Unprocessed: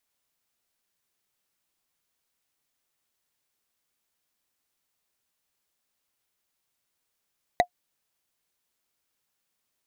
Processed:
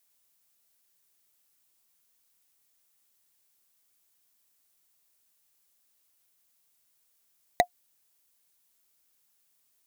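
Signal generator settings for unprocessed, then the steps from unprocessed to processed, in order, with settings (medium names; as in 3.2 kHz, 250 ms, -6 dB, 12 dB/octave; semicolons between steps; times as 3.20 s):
wood hit, lowest mode 713 Hz, decay 0.08 s, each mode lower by 5 dB, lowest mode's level -10.5 dB
treble shelf 5.8 kHz +11.5 dB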